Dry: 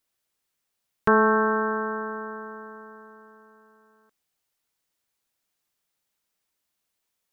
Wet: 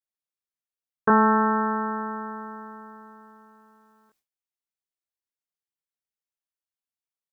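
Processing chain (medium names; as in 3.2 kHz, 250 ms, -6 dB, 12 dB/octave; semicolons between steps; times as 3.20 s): gate with hold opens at -57 dBFS; doubling 24 ms -2 dB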